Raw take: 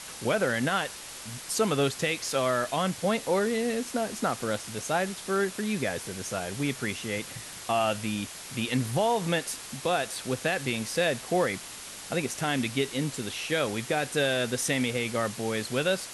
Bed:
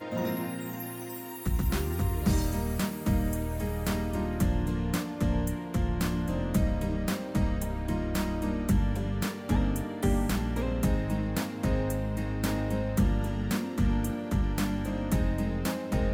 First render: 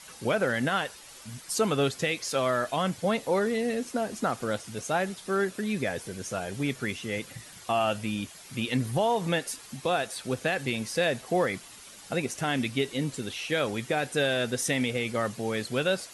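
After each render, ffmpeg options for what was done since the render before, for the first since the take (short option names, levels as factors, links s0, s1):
-af "afftdn=nr=9:nf=-42"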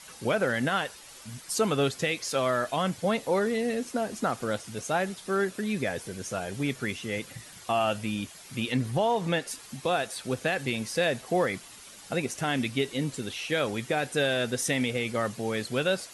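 -filter_complex "[0:a]asettb=1/sr,asplit=3[s0][s1][s2];[s0]atrim=end=8.724[s3];[s1]atrim=start=8.72:end=9.51,asetpts=PTS-STARTPTS,afade=t=in:d=0.004:c=qsin,afade=t=out:st=0.786:d=0.004:c=qsin,highshelf=f=10000:g=-9.5[s4];[s2]atrim=start=9.506[s5];[s3][s4]acrossfade=d=0.004:c1=hsin:c2=qsin[s6];[s6][s5]acrossfade=d=0.004:c1=qsin:c2=hsin"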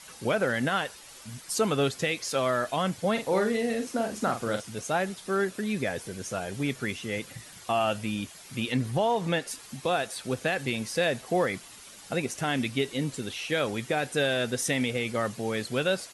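-filter_complex "[0:a]asplit=3[s0][s1][s2];[s0]afade=t=out:st=3.15:d=0.02[s3];[s1]asplit=2[s4][s5];[s5]adelay=43,volume=0.473[s6];[s4][s6]amix=inputs=2:normalize=0,afade=t=in:st=3.15:d=0.02,afade=t=out:st=4.6:d=0.02[s7];[s2]afade=t=in:st=4.6:d=0.02[s8];[s3][s7][s8]amix=inputs=3:normalize=0"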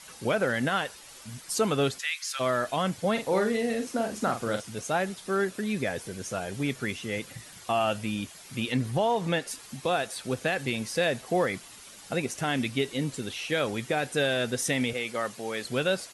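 -filter_complex "[0:a]asplit=3[s0][s1][s2];[s0]afade=t=out:st=1.98:d=0.02[s3];[s1]highpass=f=1300:w=0.5412,highpass=f=1300:w=1.3066,afade=t=in:st=1.98:d=0.02,afade=t=out:st=2.39:d=0.02[s4];[s2]afade=t=in:st=2.39:d=0.02[s5];[s3][s4][s5]amix=inputs=3:normalize=0,asettb=1/sr,asplit=3[s6][s7][s8];[s6]atrim=end=14.934[s9];[s7]atrim=start=14.93:end=15.65,asetpts=PTS-STARTPTS,afade=t=in:d=0.004:c=qsin,afade=t=out:st=0.716:d=0.004:c=qsin,highpass=f=440:p=1[s10];[s8]atrim=start=15.646[s11];[s9][s10]acrossfade=d=0.004:c1=hsin:c2=qsin[s12];[s12][s11]acrossfade=d=0.004:c1=qsin:c2=hsin"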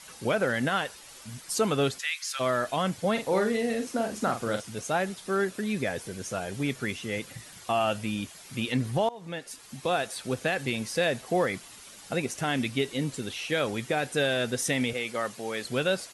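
-filter_complex "[0:a]asplit=2[s0][s1];[s0]atrim=end=9.09,asetpts=PTS-STARTPTS,afade=t=out:st=9.086:d=0.004:c=hsin:silence=0.0841395[s2];[s1]atrim=start=9.09,asetpts=PTS-STARTPTS,afade=t=in:d=0.84:silence=0.0841395[s3];[s2][s3]concat=n=2:v=0:a=1"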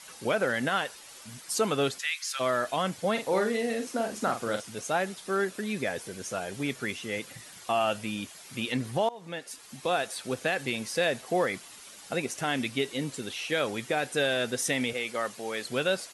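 -af "lowshelf=f=140:g=-10.5"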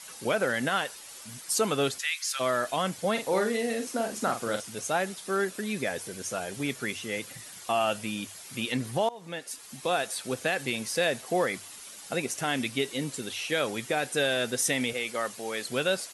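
-af "highshelf=f=7000:g=6.5,bandreject=f=50:t=h:w=6,bandreject=f=100:t=h:w=6"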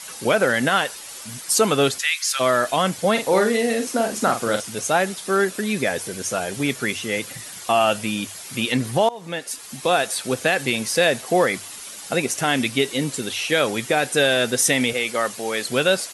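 -af "volume=2.66"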